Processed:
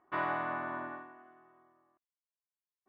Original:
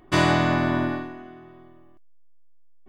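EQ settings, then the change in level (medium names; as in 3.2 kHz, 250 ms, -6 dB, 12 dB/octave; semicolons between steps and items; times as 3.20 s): band-pass filter 1.2 kHz, Q 1.4; distance through air 440 m; -5.5 dB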